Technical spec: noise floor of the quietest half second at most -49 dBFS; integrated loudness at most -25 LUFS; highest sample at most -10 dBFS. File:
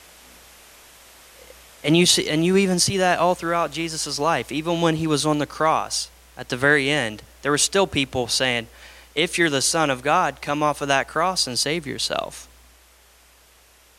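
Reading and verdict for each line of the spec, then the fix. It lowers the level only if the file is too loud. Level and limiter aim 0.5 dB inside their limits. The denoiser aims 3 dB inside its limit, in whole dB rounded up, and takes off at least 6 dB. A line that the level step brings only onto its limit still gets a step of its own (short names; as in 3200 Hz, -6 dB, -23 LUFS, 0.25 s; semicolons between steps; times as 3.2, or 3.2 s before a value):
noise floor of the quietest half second -54 dBFS: OK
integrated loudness -21.0 LUFS: fail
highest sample -4.5 dBFS: fail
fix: gain -4.5 dB; limiter -10.5 dBFS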